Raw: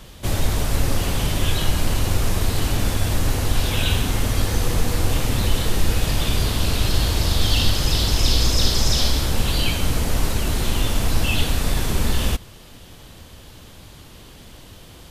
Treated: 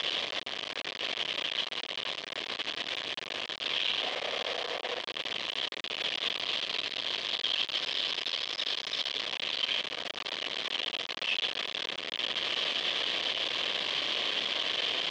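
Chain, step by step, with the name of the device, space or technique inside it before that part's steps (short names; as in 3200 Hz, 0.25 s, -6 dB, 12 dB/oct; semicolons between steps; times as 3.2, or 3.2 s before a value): 4–4.99 band shelf 620 Hz +11 dB 1 oct; home computer beeper (infinite clipping; speaker cabinet 660–4100 Hz, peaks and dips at 850 Hz -9 dB, 1400 Hz -9 dB, 3200 Hz +7 dB); gain -8 dB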